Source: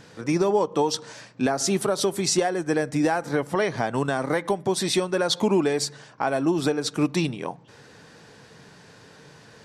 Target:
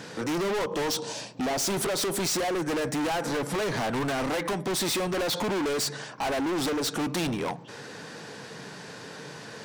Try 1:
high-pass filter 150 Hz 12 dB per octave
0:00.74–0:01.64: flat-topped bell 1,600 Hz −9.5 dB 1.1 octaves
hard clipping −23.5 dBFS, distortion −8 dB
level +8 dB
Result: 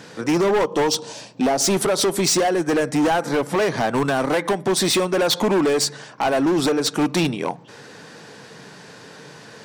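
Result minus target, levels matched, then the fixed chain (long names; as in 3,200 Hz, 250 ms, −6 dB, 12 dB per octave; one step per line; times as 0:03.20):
hard clipping: distortion −6 dB
high-pass filter 150 Hz 12 dB per octave
0:00.74–0:01.64: flat-topped bell 1,600 Hz −9.5 dB 1.1 octaves
hard clipping −34.5 dBFS, distortion −3 dB
level +8 dB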